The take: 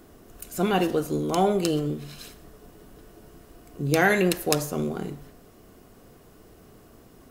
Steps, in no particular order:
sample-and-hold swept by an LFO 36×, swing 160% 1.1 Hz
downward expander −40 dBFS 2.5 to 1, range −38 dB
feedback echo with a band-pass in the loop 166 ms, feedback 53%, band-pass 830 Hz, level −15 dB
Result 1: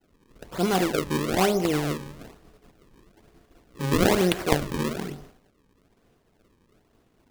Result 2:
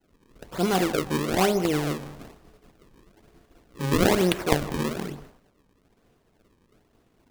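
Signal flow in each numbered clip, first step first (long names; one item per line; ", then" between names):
feedback echo with a band-pass in the loop, then downward expander, then sample-and-hold swept by an LFO
sample-and-hold swept by an LFO, then feedback echo with a band-pass in the loop, then downward expander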